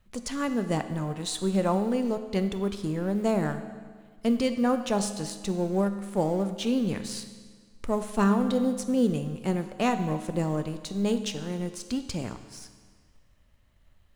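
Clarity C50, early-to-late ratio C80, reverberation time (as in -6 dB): 10.0 dB, 11.5 dB, 1.6 s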